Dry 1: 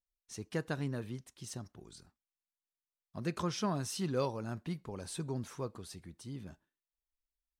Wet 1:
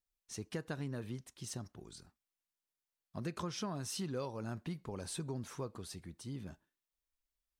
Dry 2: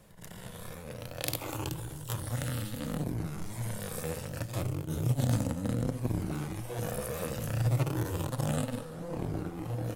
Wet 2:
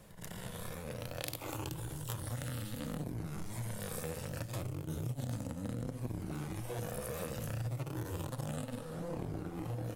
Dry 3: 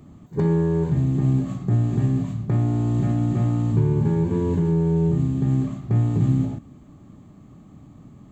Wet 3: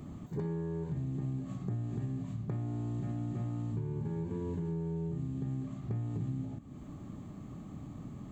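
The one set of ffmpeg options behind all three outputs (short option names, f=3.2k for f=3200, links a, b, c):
-af "acompressor=threshold=-38dB:ratio=4,volume=1dB"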